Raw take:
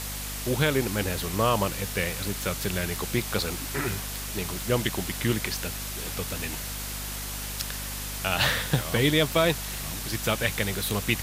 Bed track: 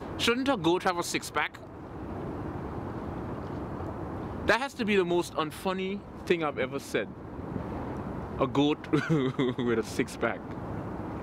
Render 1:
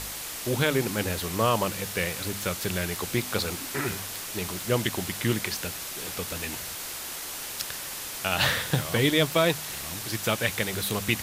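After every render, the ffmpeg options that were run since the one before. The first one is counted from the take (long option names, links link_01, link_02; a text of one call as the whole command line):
ffmpeg -i in.wav -af "bandreject=frequency=50:width_type=h:width=4,bandreject=frequency=100:width_type=h:width=4,bandreject=frequency=150:width_type=h:width=4,bandreject=frequency=200:width_type=h:width=4,bandreject=frequency=250:width_type=h:width=4" out.wav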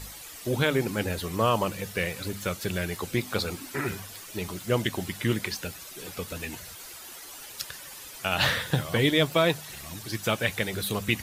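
ffmpeg -i in.wav -af "afftdn=noise_reduction=11:noise_floor=-37" out.wav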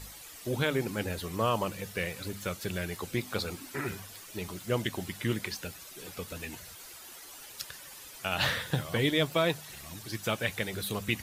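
ffmpeg -i in.wav -af "volume=-4.5dB" out.wav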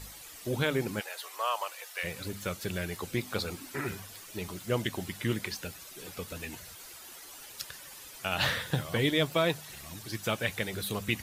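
ffmpeg -i in.wav -filter_complex "[0:a]asplit=3[link_01][link_02][link_03];[link_01]afade=type=out:start_time=0.99:duration=0.02[link_04];[link_02]highpass=frequency=680:width=0.5412,highpass=frequency=680:width=1.3066,afade=type=in:start_time=0.99:duration=0.02,afade=type=out:start_time=2.03:duration=0.02[link_05];[link_03]afade=type=in:start_time=2.03:duration=0.02[link_06];[link_04][link_05][link_06]amix=inputs=3:normalize=0" out.wav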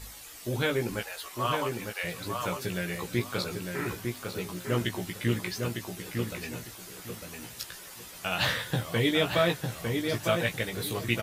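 ffmpeg -i in.wav -filter_complex "[0:a]asplit=2[link_01][link_02];[link_02]adelay=17,volume=-4.5dB[link_03];[link_01][link_03]amix=inputs=2:normalize=0,asplit=2[link_04][link_05];[link_05]adelay=903,lowpass=frequency=2300:poles=1,volume=-4dB,asplit=2[link_06][link_07];[link_07]adelay=903,lowpass=frequency=2300:poles=1,volume=0.25,asplit=2[link_08][link_09];[link_09]adelay=903,lowpass=frequency=2300:poles=1,volume=0.25[link_10];[link_04][link_06][link_08][link_10]amix=inputs=4:normalize=0" out.wav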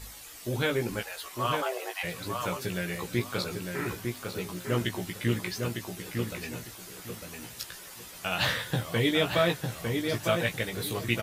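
ffmpeg -i in.wav -filter_complex "[0:a]asplit=3[link_01][link_02][link_03];[link_01]afade=type=out:start_time=1.61:duration=0.02[link_04];[link_02]afreqshift=260,afade=type=in:start_time=1.61:duration=0.02,afade=type=out:start_time=2.02:duration=0.02[link_05];[link_03]afade=type=in:start_time=2.02:duration=0.02[link_06];[link_04][link_05][link_06]amix=inputs=3:normalize=0" out.wav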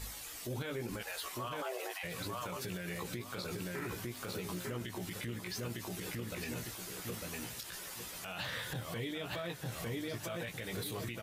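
ffmpeg -i in.wav -af "acompressor=threshold=-33dB:ratio=6,alimiter=level_in=6.5dB:limit=-24dB:level=0:latency=1:release=35,volume=-6.5dB" out.wav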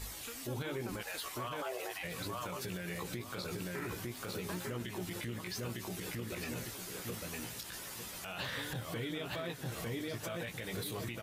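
ffmpeg -i in.wav -i bed.wav -filter_complex "[1:a]volume=-24dB[link_01];[0:a][link_01]amix=inputs=2:normalize=0" out.wav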